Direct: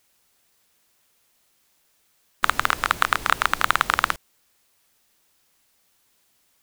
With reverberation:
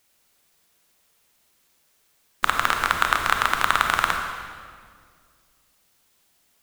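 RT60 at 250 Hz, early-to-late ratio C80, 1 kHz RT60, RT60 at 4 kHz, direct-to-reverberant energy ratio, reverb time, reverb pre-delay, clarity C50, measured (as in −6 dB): 2.5 s, 5.5 dB, 1.8 s, 1.5 s, 3.0 dB, 2.0 s, 29 ms, 4.0 dB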